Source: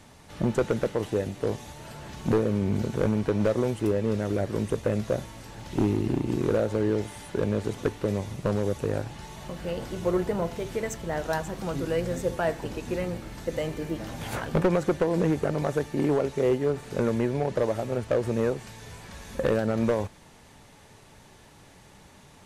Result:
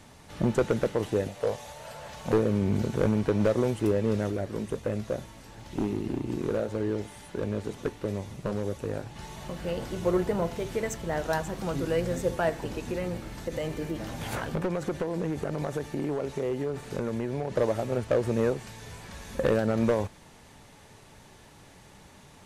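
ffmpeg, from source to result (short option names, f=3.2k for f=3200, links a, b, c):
-filter_complex "[0:a]asettb=1/sr,asplit=3[a][b][c];[a]atrim=end=1.274[d];[b]atrim=start=1.27:end=2.33,asetpts=PTS-STARTPTS,afade=t=in:d=0.004:c=qsin,afade=t=out:st=1.056:d=0.004:c=qsin,lowshelf=f=430:t=q:w=3:g=-6.5[e];[c]atrim=start=2.326[f];[d][e]acrossfade=d=0.004:c1=hsin:c2=qsin[g];[g][f]acrossfade=d=0.004:c1=qsin:c2=hsin,asplit=3[h][i][j];[h]afade=t=out:st=4.29:d=0.02[k];[i]flanger=delay=2.7:depth=2.6:regen=-77:speed=1.6:shape=triangular,afade=t=in:st=4.29:d=0.02,afade=t=out:st=9.15:d=0.02[l];[j]afade=t=in:st=9.15:d=0.02[m];[k][l][m]amix=inputs=3:normalize=0,asettb=1/sr,asplit=3[n][o][p];[n]atrim=end=12.494[q];[o]atrim=start=12.49:end=17.55,asetpts=PTS-STARTPTS,afade=t=in:d=0.004:c=qsin,afade=t=out:st=5.056:d=0.004:c=qsin,acompressor=threshold=-26dB:ratio=6:attack=3.2:release=140:knee=1:detection=peak[r];[p]atrim=start=17.546[s];[q][r]acrossfade=d=0.004:c1=hsin:c2=qsin[t];[t][s]acrossfade=d=0.004:c1=qsin:c2=hsin"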